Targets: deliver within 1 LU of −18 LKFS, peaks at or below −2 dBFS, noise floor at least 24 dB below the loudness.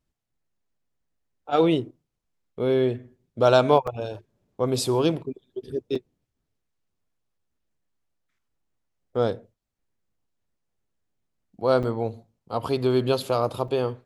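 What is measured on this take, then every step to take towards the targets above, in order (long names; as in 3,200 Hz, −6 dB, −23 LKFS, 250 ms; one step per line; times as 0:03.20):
number of dropouts 4; longest dropout 4.7 ms; integrated loudness −24.5 LKFS; sample peak −4.5 dBFS; target loudness −18.0 LKFS
→ repair the gap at 0:03.87/0:05.95/0:11.83/0:13.68, 4.7 ms
level +6.5 dB
brickwall limiter −2 dBFS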